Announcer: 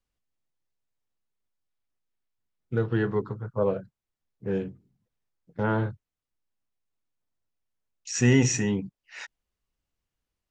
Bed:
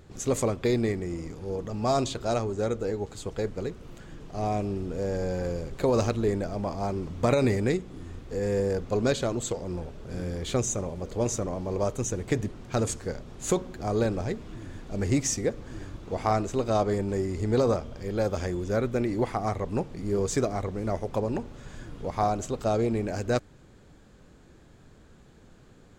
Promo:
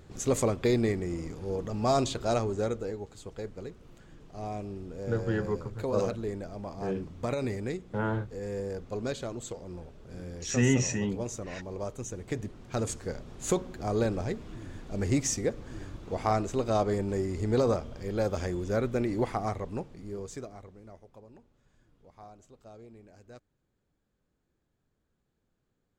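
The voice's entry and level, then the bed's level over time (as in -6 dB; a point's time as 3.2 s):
2.35 s, -4.5 dB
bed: 2.54 s -0.5 dB
3.09 s -8.5 dB
12.09 s -8.5 dB
13.21 s -2 dB
19.38 s -2 dB
21.2 s -24.5 dB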